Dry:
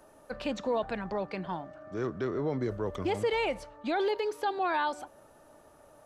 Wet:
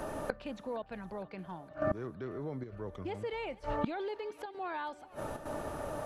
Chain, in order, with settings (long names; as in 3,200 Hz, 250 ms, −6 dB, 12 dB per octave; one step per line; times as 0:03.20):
square-wave tremolo 1.1 Hz, depth 60%, duty 90%
gate with flip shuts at −37 dBFS, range −27 dB
bass and treble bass +4 dB, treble −6 dB
on a send: feedback echo with a high-pass in the loop 462 ms, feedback 77%, high-pass 850 Hz, level −18 dB
on the sum: level +17.5 dB